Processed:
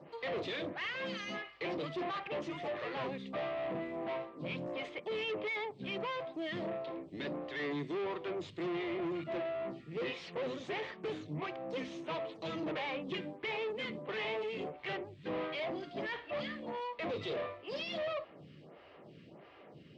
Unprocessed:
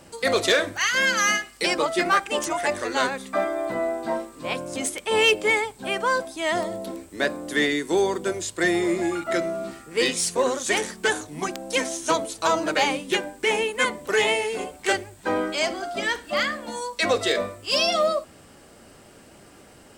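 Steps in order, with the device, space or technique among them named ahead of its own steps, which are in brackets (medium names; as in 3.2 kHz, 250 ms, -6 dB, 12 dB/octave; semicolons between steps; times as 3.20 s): vibe pedal into a guitar amplifier (lamp-driven phase shifter 1.5 Hz; valve stage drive 34 dB, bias 0.45; cabinet simulation 110–3400 Hz, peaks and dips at 150 Hz +9 dB, 240 Hz -4 dB, 840 Hz -3 dB, 1.5 kHz -9 dB)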